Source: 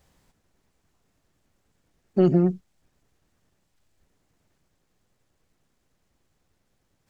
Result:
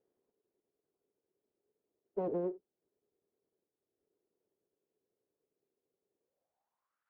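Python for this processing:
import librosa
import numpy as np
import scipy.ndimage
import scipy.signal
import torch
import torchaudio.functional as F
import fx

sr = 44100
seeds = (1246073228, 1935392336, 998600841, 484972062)

y = np.abs(x)
y = fx.filter_sweep_bandpass(y, sr, from_hz=410.0, to_hz=1400.0, start_s=6.17, end_s=7.0, q=5.3)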